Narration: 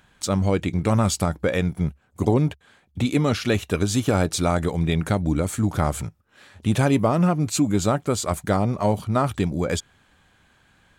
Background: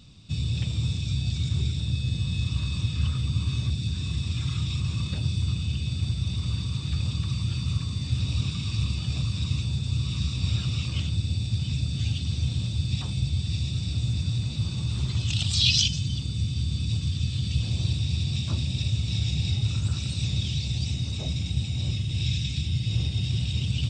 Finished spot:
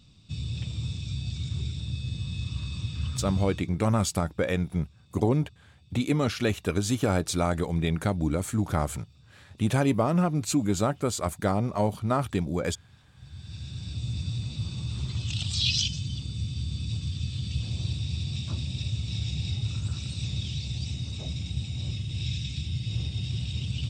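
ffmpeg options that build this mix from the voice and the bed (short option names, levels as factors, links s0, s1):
-filter_complex "[0:a]adelay=2950,volume=0.596[s0];[1:a]volume=9.44,afade=t=out:st=3.32:d=0.39:silence=0.0630957,afade=t=in:st=13.15:d=1.03:silence=0.0562341[s1];[s0][s1]amix=inputs=2:normalize=0"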